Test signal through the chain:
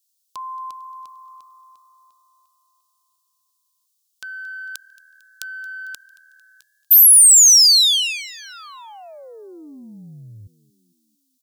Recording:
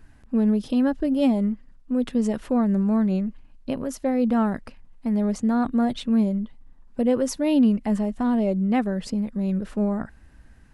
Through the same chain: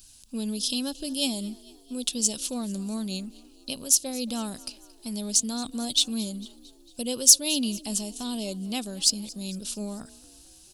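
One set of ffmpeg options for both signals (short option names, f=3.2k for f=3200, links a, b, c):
-filter_complex "[0:a]aexciter=amount=13.6:drive=9.8:freq=3.1k,asplit=2[a][b];[b]asplit=4[c][d][e][f];[c]adelay=225,afreqshift=39,volume=-21.5dB[g];[d]adelay=450,afreqshift=78,volume=-26.2dB[h];[e]adelay=675,afreqshift=117,volume=-31dB[i];[f]adelay=900,afreqshift=156,volume=-35.7dB[j];[g][h][i][j]amix=inputs=4:normalize=0[k];[a][k]amix=inputs=2:normalize=0,volume=-11dB"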